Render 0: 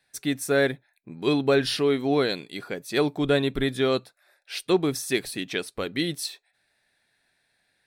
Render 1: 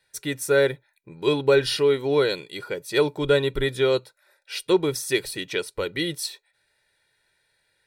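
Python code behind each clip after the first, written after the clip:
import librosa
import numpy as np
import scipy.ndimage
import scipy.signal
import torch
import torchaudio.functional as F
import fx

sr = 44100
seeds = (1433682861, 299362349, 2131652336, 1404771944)

y = x + 0.67 * np.pad(x, (int(2.1 * sr / 1000.0), 0))[:len(x)]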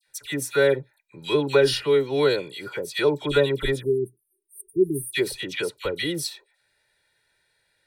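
y = fx.spec_erase(x, sr, start_s=3.79, length_s=1.33, low_hz=410.0, high_hz=8400.0)
y = fx.dispersion(y, sr, late='lows', ms=73.0, hz=1600.0)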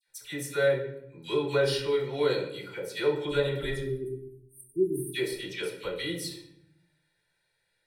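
y = fx.room_shoebox(x, sr, seeds[0], volume_m3=180.0, walls='mixed', distance_m=0.86)
y = F.gain(torch.from_numpy(y), -9.0).numpy()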